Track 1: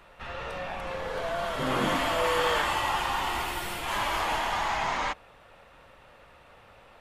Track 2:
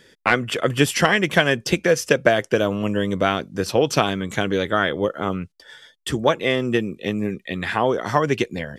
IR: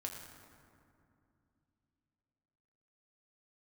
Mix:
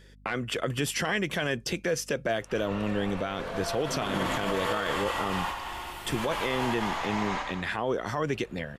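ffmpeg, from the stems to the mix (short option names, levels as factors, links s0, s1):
-filter_complex "[0:a]adelay=2300,volume=0.596,asplit=2[s0][s1];[s1]volume=0.562[s2];[1:a]aeval=exprs='val(0)+0.00447*(sin(2*PI*50*n/s)+sin(2*PI*2*50*n/s)/2+sin(2*PI*3*50*n/s)/3+sin(2*PI*4*50*n/s)/4+sin(2*PI*5*50*n/s)/5)':c=same,volume=0.501,asplit=2[s3][s4];[s4]apad=whole_len=410205[s5];[s0][s5]sidechaingate=range=0.0224:threshold=0.00708:ratio=16:detection=peak[s6];[s2]aecho=0:1:92|184|276|368|460|552|644|736|828:1|0.57|0.325|0.185|0.106|0.0602|0.0343|0.0195|0.0111[s7];[s6][s3][s7]amix=inputs=3:normalize=0,alimiter=limit=0.119:level=0:latency=1:release=27"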